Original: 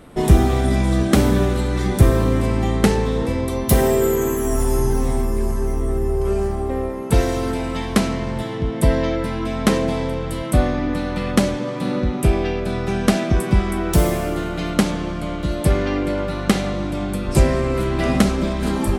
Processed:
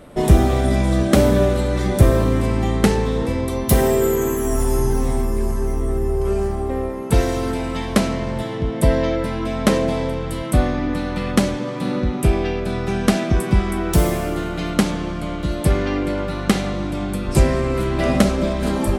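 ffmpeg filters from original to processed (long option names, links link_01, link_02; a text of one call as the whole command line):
ffmpeg -i in.wav -af "asetnsamples=nb_out_samples=441:pad=0,asendcmd='2.24 equalizer g -0.5;7.88 equalizer g 8;10.11 equalizer g -2;17.97 equalizer g 9',equalizer=frequency=580:width_type=o:width=0.2:gain=9.5" out.wav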